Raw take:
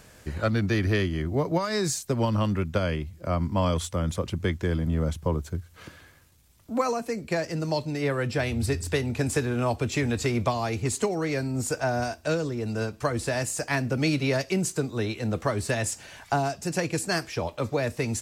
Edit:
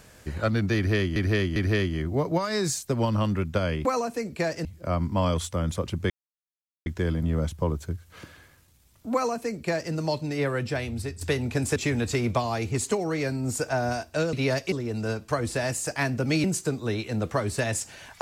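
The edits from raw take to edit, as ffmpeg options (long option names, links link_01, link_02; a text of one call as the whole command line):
ffmpeg -i in.wav -filter_complex "[0:a]asplit=11[link_01][link_02][link_03][link_04][link_05][link_06][link_07][link_08][link_09][link_10][link_11];[link_01]atrim=end=1.162[link_12];[link_02]atrim=start=0.758:end=1.162[link_13];[link_03]atrim=start=0.758:end=3.052[link_14];[link_04]atrim=start=6.768:end=7.572[link_15];[link_05]atrim=start=3.048:end=4.5,asetpts=PTS-STARTPTS,afade=type=out:start_time=1.448:duration=0.004:curve=hsin,apad=pad_dur=0.76[link_16];[link_06]atrim=start=4.5:end=8.85,asetpts=PTS-STARTPTS,afade=type=in:duration=0.004:curve=hsin,afade=type=out:start_time=3.64:duration=0.71:silence=0.334965[link_17];[link_07]atrim=start=8.85:end=9.402,asetpts=PTS-STARTPTS,afade=type=in:duration=0.004:curve=hsin:silence=0.334965[link_18];[link_08]atrim=start=9.868:end=12.442[link_19];[link_09]atrim=start=14.158:end=14.552[link_20];[link_10]atrim=start=12.438:end=14.162[link_21];[link_11]atrim=start=14.548[link_22];[link_12][link_13]acrossfade=duration=0.004:curve1=hsin:curve2=hsin[link_23];[link_23][link_14]acrossfade=duration=0.004:curve1=hsin:curve2=hsin[link_24];[link_24][link_15]acrossfade=duration=0.004:curve1=hsin:curve2=hsin[link_25];[link_16][link_17][link_18]concat=n=3:v=0:a=1[link_26];[link_25][link_26]acrossfade=duration=0.004:curve1=hsin:curve2=hsin[link_27];[link_27][link_19]acrossfade=duration=0.004:curve1=hsin:curve2=hsin[link_28];[link_28][link_20]acrossfade=duration=0.004:curve1=hsin:curve2=hsin[link_29];[link_29][link_21]acrossfade=duration=0.004:curve1=hsin:curve2=hsin[link_30];[link_30][link_22]acrossfade=duration=0.004:curve1=hsin:curve2=hsin" out.wav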